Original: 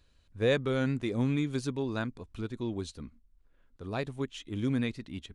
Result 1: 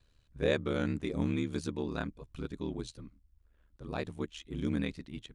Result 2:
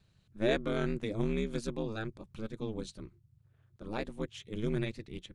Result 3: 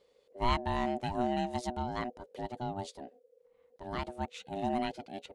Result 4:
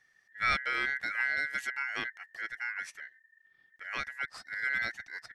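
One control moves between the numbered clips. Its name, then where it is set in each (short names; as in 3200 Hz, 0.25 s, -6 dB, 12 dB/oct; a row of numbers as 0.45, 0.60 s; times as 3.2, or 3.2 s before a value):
ring modulator, frequency: 38, 110, 490, 1800 Hz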